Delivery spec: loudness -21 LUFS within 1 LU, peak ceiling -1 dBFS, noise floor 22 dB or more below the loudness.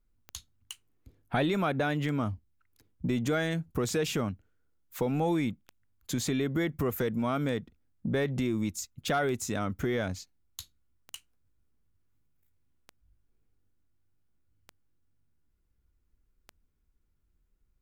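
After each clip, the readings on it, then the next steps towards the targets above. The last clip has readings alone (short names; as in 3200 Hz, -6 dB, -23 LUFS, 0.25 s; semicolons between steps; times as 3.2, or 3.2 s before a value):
clicks 10; loudness -31.0 LUFS; peak -16.5 dBFS; loudness target -21.0 LUFS
-> de-click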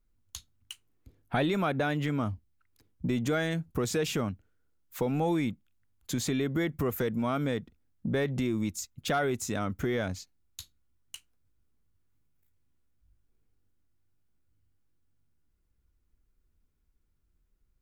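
clicks 0; loudness -31.0 LUFS; peak -16.5 dBFS; loudness target -21.0 LUFS
-> gain +10 dB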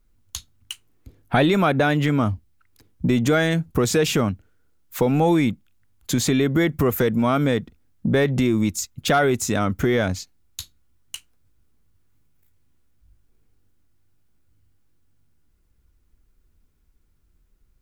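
loudness -21.0 LUFS; peak -6.5 dBFS; noise floor -63 dBFS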